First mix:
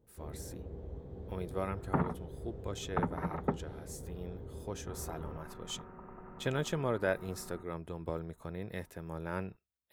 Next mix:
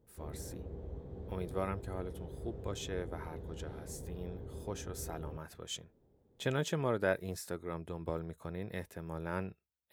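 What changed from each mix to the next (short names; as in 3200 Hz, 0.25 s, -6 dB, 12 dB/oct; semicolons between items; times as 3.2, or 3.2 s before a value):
second sound: muted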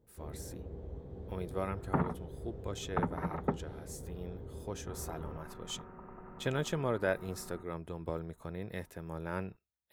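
second sound: unmuted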